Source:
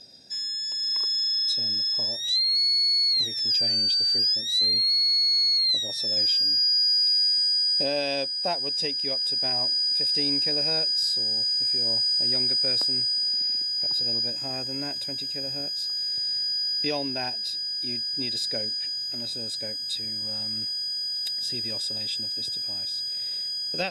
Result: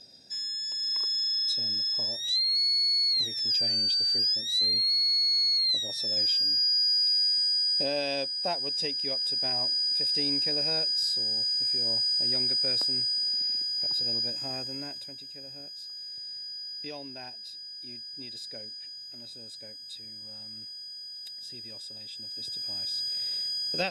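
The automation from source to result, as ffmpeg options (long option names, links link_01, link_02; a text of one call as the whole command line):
ffmpeg -i in.wav -af "volume=8dB,afade=type=out:start_time=14.51:duration=0.66:silence=0.354813,afade=type=in:start_time=22.13:duration=0.87:silence=0.281838" out.wav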